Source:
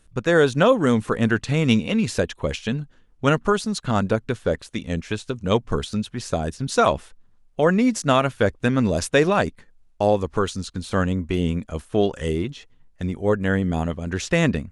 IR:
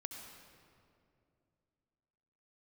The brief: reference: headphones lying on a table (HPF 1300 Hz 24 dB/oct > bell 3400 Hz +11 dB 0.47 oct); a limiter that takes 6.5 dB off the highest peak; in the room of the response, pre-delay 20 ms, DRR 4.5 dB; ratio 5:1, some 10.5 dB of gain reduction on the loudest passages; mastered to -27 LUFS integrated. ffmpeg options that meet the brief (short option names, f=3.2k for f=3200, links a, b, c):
-filter_complex "[0:a]acompressor=threshold=-24dB:ratio=5,alimiter=limit=-18.5dB:level=0:latency=1,asplit=2[a][b];[1:a]atrim=start_sample=2205,adelay=20[c];[b][c]afir=irnorm=-1:irlink=0,volume=-2dB[d];[a][d]amix=inputs=2:normalize=0,highpass=f=1.3k:w=0.5412,highpass=f=1.3k:w=1.3066,equalizer=f=3.4k:t=o:w=0.47:g=11,volume=7dB"